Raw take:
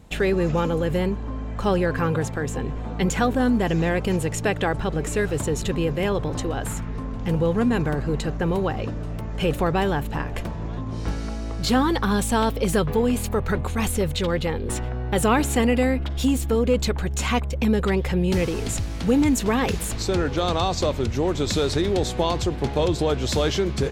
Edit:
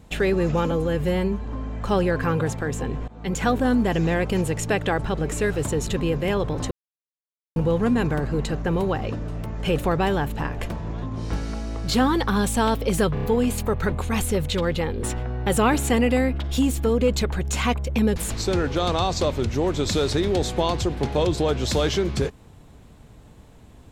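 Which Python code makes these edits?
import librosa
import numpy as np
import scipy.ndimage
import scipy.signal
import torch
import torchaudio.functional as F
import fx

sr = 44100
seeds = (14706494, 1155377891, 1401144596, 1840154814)

y = fx.edit(x, sr, fx.stretch_span(start_s=0.71, length_s=0.5, factor=1.5),
    fx.fade_in_from(start_s=2.83, length_s=0.4, floor_db=-20.5),
    fx.silence(start_s=6.46, length_s=0.85),
    fx.stutter(start_s=12.89, slice_s=0.03, count=4),
    fx.cut(start_s=17.82, length_s=1.95), tone=tone)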